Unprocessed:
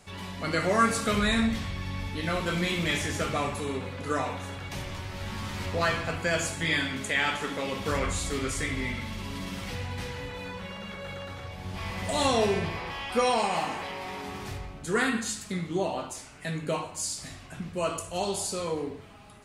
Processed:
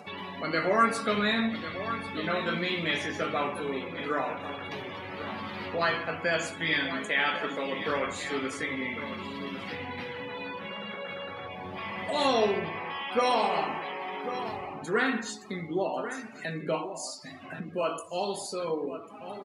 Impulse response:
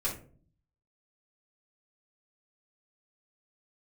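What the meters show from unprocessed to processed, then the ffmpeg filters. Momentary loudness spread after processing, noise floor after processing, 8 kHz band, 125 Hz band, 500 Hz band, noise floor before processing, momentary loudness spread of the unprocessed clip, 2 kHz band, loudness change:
11 LU, −44 dBFS, −9.0 dB, −8.0 dB, 0.0 dB, −45 dBFS, 13 LU, 0.0 dB, −1.0 dB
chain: -filter_complex "[0:a]highpass=230,asplit=2[link_01][link_02];[link_02]adelay=19,volume=-12dB[link_03];[link_01][link_03]amix=inputs=2:normalize=0,acompressor=mode=upward:threshold=-31dB:ratio=2.5,equalizer=frequency=7900:width=1.5:gain=-7.5,aecho=1:1:1095:0.282,afftdn=noise_reduction=20:noise_floor=-41"

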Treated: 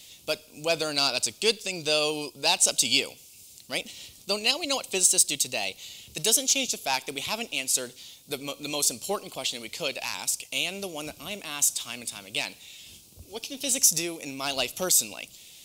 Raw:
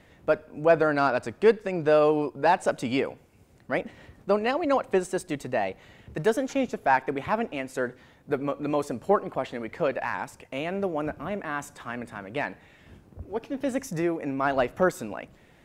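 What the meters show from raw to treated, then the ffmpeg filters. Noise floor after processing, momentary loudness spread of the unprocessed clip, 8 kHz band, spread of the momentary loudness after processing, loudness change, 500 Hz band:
−52 dBFS, 13 LU, +23.0 dB, 16 LU, +1.5 dB, −8.0 dB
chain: -af "aexciter=amount=12.3:drive=9.6:freq=2800,volume=-8dB"

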